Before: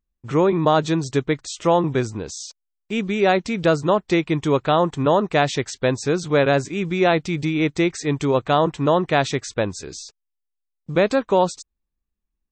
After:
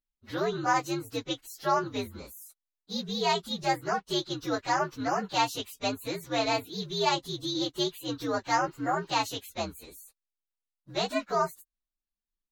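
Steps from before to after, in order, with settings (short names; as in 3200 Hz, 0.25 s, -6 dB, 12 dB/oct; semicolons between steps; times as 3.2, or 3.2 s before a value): inharmonic rescaling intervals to 122%; spectral repair 8.74–9.07, 2300–6600 Hz before; graphic EQ 125/250/500/1000/4000 Hz -10/+3/-4/+5/+10 dB; gain -8.5 dB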